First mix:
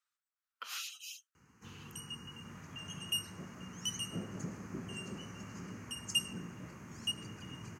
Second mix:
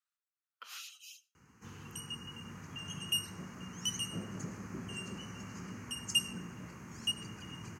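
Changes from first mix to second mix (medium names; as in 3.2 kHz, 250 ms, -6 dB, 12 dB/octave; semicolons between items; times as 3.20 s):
speech -6.5 dB; second sound -4.5 dB; reverb: on, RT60 0.40 s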